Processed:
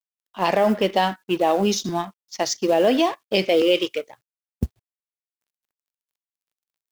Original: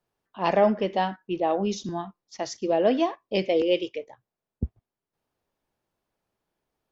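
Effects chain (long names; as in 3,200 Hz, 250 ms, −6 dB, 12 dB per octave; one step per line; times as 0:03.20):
mu-law and A-law mismatch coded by A
low-shelf EQ 130 Hz −4.5 dB
brickwall limiter −17.5 dBFS, peak gain reduction 8 dB
high-shelf EQ 2,300 Hz +7.5 dB
level +7.5 dB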